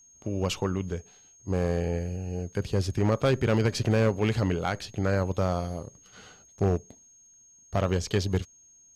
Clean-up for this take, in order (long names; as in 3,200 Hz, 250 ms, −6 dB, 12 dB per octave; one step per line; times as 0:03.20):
clipped peaks rebuilt −17 dBFS
notch filter 6,500 Hz, Q 30